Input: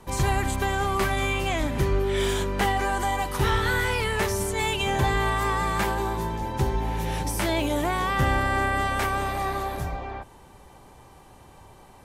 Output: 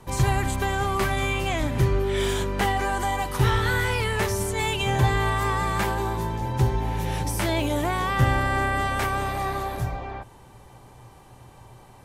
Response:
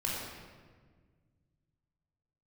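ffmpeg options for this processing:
-af "equalizer=frequency=120:width=7.3:gain=13"

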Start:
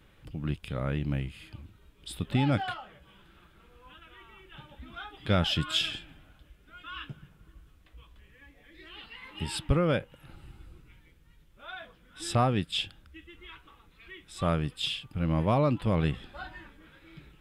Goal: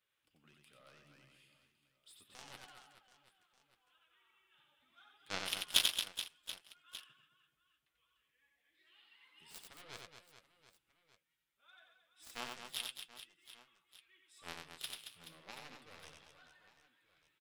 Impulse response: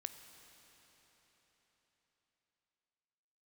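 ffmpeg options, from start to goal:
-af "highpass=frequency=1200:poles=1,highshelf=frequency=3900:gain=7,aeval=exprs='0.237*(cos(1*acos(clip(val(0)/0.237,-1,1)))-cos(1*PI/2))+0.0841*(cos(3*acos(clip(val(0)/0.237,-1,1)))-cos(3*PI/2))':channel_layout=same,flanger=delay=1.5:depth=7.1:regen=-42:speed=0.5:shape=triangular,aecho=1:1:90|225|427.5|731.2|1187:0.631|0.398|0.251|0.158|0.1,volume=6.5dB"

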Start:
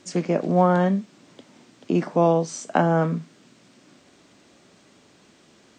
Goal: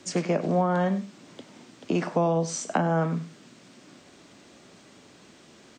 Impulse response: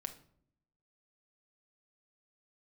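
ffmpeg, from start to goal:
-filter_complex "[0:a]acrossover=split=210|440[link_01][link_02][link_03];[link_01]acompressor=threshold=-31dB:ratio=4[link_04];[link_02]acompressor=threshold=-39dB:ratio=4[link_05];[link_03]acompressor=threshold=-27dB:ratio=4[link_06];[link_04][link_05][link_06]amix=inputs=3:normalize=0,asplit=2[link_07][link_08];[link_08]aecho=0:1:97:0.158[link_09];[link_07][link_09]amix=inputs=2:normalize=0,volume=2.5dB"

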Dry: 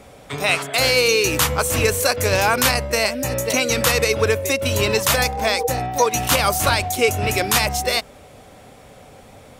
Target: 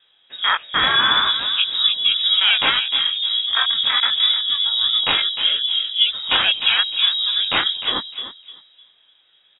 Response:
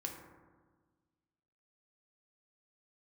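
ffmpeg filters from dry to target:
-filter_complex "[0:a]aemphasis=mode=production:type=75fm,afwtdn=0.141,equalizer=frequency=620:width=5.6:gain=9.5,asplit=2[link_01][link_02];[link_02]adelay=304,lowpass=frequency=1500:poles=1,volume=-6.5dB,asplit=2[link_03][link_04];[link_04]adelay=304,lowpass=frequency=1500:poles=1,volume=0.32,asplit=2[link_05][link_06];[link_06]adelay=304,lowpass=frequency=1500:poles=1,volume=0.32,asplit=2[link_07][link_08];[link_08]adelay=304,lowpass=frequency=1500:poles=1,volume=0.32[link_09];[link_03][link_05][link_07][link_09]amix=inputs=4:normalize=0[link_10];[link_01][link_10]amix=inputs=2:normalize=0,flanger=delay=18:depth=5.6:speed=1.5,lowpass=frequency=3300:width_type=q:width=0.5098,lowpass=frequency=3300:width_type=q:width=0.6013,lowpass=frequency=3300:width_type=q:width=0.9,lowpass=frequency=3300:width_type=q:width=2.563,afreqshift=-3900,volume=3dB"

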